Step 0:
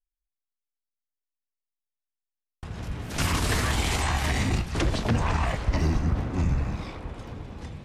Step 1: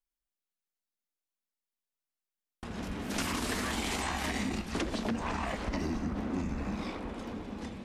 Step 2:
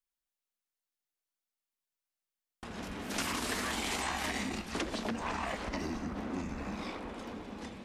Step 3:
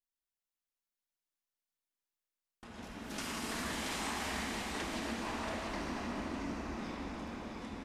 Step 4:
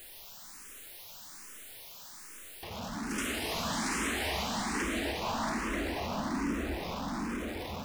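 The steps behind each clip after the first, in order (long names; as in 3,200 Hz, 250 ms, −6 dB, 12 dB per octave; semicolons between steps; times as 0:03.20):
low shelf with overshoot 170 Hz −7 dB, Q 3; downward compressor, threshold −30 dBFS, peak gain reduction 10.5 dB
low-shelf EQ 280 Hz −7 dB
single-tap delay 680 ms −7 dB; convolution reverb RT60 5.6 s, pre-delay 3 ms, DRR −2.5 dB; level −8 dB
converter with a step at zero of −43 dBFS; frequency shifter mixed with the dry sound +1.2 Hz; level +6.5 dB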